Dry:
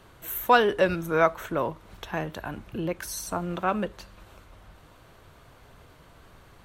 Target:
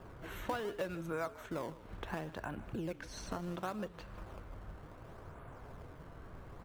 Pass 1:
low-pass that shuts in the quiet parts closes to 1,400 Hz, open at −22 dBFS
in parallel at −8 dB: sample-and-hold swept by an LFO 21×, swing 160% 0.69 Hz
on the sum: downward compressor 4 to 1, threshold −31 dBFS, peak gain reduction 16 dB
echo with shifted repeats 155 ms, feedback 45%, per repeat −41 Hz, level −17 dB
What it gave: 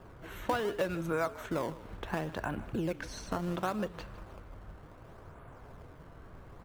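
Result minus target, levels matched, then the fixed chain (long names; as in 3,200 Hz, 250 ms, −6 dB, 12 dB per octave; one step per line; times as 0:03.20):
downward compressor: peak gain reduction −6.5 dB
low-pass that shuts in the quiet parts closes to 1,400 Hz, open at −22 dBFS
in parallel at −8 dB: sample-and-hold swept by an LFO 21×, swing 160% 0.69 Hz
on the sum: downward compressor 4 to 1, threshold −39.5 dBFS, peak gain reduction 22 dB
echo with shifted repeats 155 ms, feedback 45%, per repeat −41 Hz, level −17 dB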